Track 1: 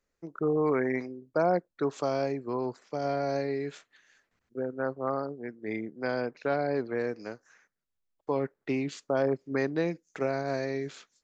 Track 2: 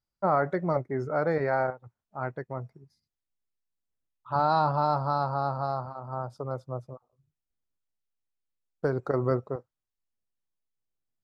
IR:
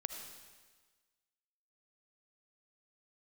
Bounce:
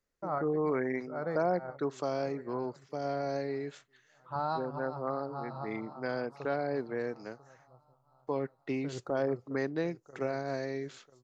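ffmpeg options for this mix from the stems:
-filter_complex "[0:a]volume=-4dB,asplit=2[link_01][link_02];[1:a]volume=-8.5dB,asplit=2[link_03][link_04];[link_04]volume=-18dB[link_05];[link_02]apad=whole_len=495536[link_06];[link_03][link_06]sidechaincompress=threshold=-45dB:ratio=5:attack=16:release=104[link_07];[link_05]aecho=0:1:993|1986|2979|3972|4965:1|0.35|0.122|0.0429|0.015[link_08];[link_01][link_07][link_08]amix=inputs=3:normalize=0,bandreject=frequency=2400:width=21"

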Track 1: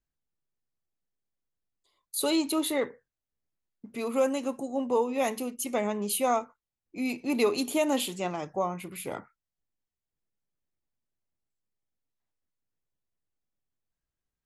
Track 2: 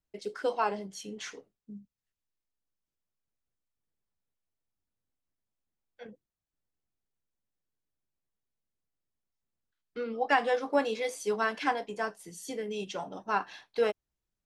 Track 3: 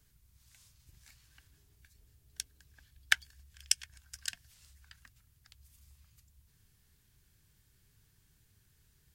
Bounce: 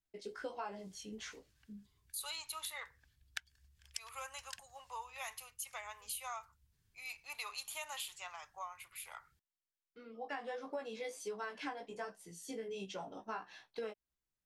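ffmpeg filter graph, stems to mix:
ffmpeg -i stem1.wav -i stem2.wav -i stem3.wav -filter_complex "[0:a]highpass=frequency=980:width=0.5412,highpass=frequency=980:width=1.3066,acontrast=90,volume=-14.5dB,asplit=2[link_01][link_02];[1:a]flanger=delay=15.5:depth=2.9:speed=1.4,volume=-3.5dB[link_03];[2:a]highshelf=frequency=8300:gain=-6,adelay=250,volume=-8.5dB[link_04];[link_02]apad=whole_len=637583[link_05];[link_03][link_05]sidechaincompress=threshold=-59dB:ratio=12:attack=8.2:release=1360[link_06];[link_01][link_06][link_04]amix=inputs=3:normalize=0,acompressor=threshold=-39dB:ratio=6" out.wav

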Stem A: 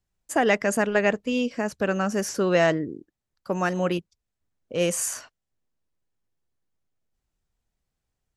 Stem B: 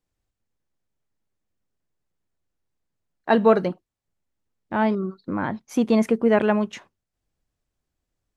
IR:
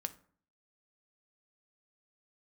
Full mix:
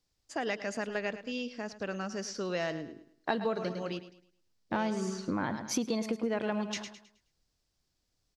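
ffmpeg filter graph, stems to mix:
-filter_complex "[0:a]lowpass=4800,volume=-12dB,asplit=2[link_01][link_02];[link_02]volume=-14.5dB[link_03];[1:a]volume=-1dB,asplit=2[link_04][link_05];[link_05]volume=-11.5dB[link_06];[link_03][link_06]amix=inputs=2:normalize=0,aecho=0:1:106|212|318|424|530:1|0.34|0.116|0.0393|0.0134[link_07];[link_01][link_04][link_07]amix=inputs=3:normalize=0,equalizer=frequency=4900:width_type=o:width=1:gain=13,acompressor=threshold=-28dB:ratio=12"

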